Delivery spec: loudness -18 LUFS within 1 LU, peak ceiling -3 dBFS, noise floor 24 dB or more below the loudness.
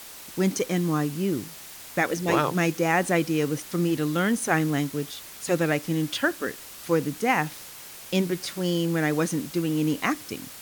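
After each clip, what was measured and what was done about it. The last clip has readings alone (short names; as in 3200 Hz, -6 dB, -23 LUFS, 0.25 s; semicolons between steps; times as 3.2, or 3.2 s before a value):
noise floor -43 dBFS; noise floor target -50 dBFS; loudness -26.0 LUFS; peak -9.0 dBFS; loudness target -18.0 LUFS
-> denoiser 7 dB, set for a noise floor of -43 dBFS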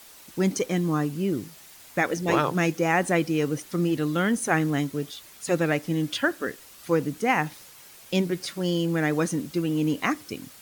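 noise floor -49 dBFS; noise floor target -50 dBFS
-> denoiser 6 dB, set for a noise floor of -49 dBFS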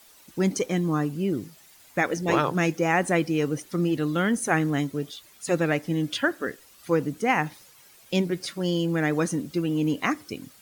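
noise floor -54 dBFS; loudness -26.0 LUFS; peak -9.0 dBFS; loudness target -18.0 LUFS
-> gain +8 dB; limiter -3 dBFS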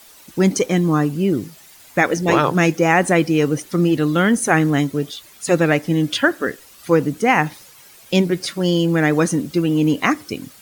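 loudness -18.0 LUFS; peak -3.0 dBFS; noise floor -46 dBFS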